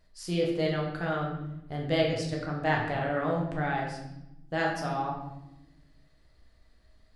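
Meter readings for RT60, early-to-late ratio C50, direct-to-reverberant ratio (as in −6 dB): 0.95 s, 3.5 dB, −2.0 dB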